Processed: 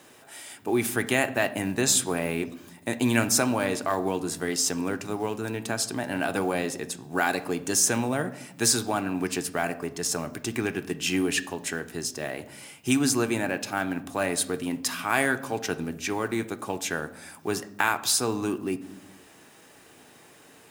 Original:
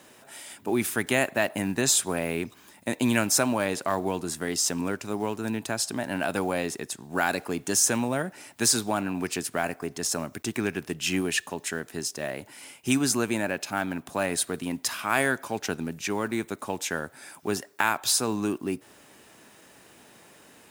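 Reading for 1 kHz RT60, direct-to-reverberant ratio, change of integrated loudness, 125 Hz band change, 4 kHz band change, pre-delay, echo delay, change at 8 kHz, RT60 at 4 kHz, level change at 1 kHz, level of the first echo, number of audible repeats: 0.75 s, 8.5 dB, +0.5 dB, +1.0 dB, 0.0 dB, 3 ms, no echo, 0.0 dB, 0.55 s, +0.5 dB, no echo, no echo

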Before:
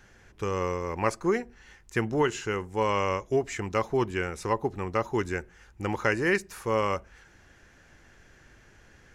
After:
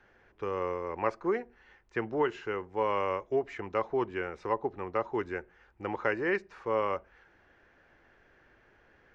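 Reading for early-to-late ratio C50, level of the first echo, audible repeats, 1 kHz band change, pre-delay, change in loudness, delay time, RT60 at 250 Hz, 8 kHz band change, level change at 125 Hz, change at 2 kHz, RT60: no reverb, no echo, no echo, -3.0 dB, no reverb, -4.0 dB, no echo, no reverb, under -20 dB, -11.5 dB, -5.5 dB, no reverb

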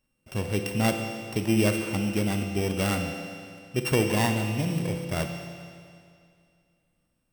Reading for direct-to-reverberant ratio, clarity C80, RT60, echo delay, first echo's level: 4.5 dB, 6.0 dB, 2.3 s, no echo, no echo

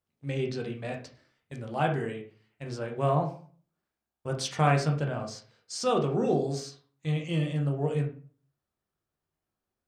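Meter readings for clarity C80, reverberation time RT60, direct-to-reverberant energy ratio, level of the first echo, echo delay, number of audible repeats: 14.0 dB, 0.45 s, 1.5 dB, no echo, no echo, no echo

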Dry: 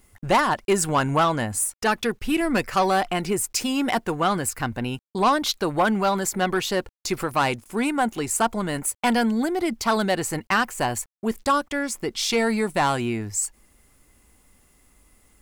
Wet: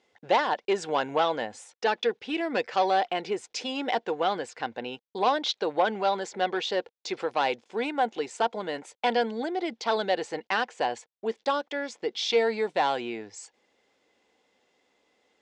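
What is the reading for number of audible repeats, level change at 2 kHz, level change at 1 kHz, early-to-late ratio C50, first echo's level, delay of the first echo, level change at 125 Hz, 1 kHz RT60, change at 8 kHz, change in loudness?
no echo, -5.5 dB, -4.0 dB, no reverb, no echo, no echo, -18.5 dB, no reverb, -17.5 dB, -5.0 dB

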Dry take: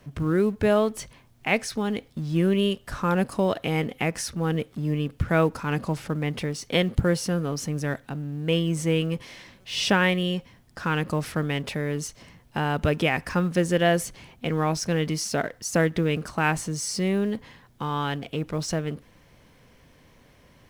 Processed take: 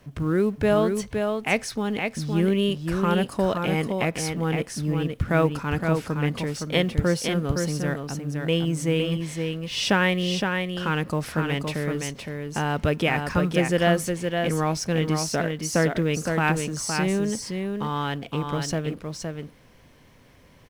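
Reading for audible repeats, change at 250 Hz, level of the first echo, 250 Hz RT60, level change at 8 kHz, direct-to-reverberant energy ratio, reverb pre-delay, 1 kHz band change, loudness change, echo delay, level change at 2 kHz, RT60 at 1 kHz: 1, +1.0 dB, -5.0 dB, no reverb, +1.0 dB, no reverb, no reverb, +1.0 dB, +1.0 dB, 515 ms, +1.0 dB, no reverb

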